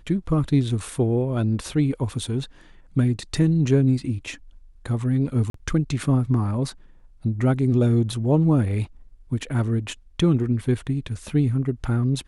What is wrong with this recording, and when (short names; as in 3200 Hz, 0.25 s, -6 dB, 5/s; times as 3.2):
5.5–5.54 gap 43 ms